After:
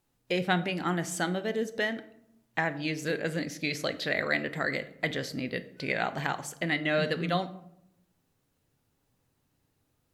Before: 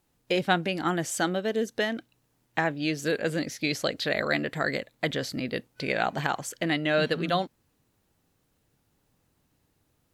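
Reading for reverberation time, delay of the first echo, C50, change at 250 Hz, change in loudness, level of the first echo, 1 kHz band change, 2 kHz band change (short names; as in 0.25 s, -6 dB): 0.75 s, none, 15.5 dB, -3.0 dB, -2.5 dB, none, -3.5 dB, -1.0 dB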